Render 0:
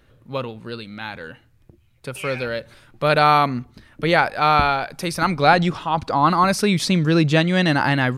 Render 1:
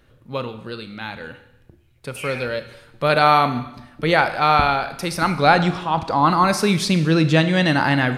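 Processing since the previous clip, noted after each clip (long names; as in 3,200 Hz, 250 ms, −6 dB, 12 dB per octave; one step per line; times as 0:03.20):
convolution reverb RT60 0.90 s, pre-delay 25 ms, DRR 10 dB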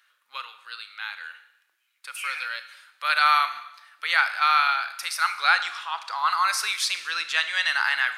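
Chebyshev high-pass filter 1,300 Hz, order 3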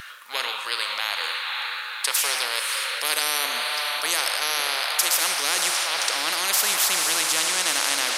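feedback delay with all-pass diffusion 530 ms, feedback 44%, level −13 dB
every bin compressed towards the loudest bin 10 to 1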